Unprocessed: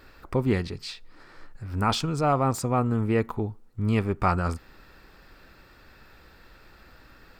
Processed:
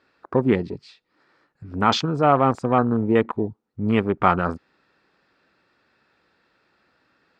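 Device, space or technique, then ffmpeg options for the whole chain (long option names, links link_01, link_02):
over-cleaned archive recording: -af "highpass=170,lowpass=5800,afwtdn=0.0178,volume=6.5dB"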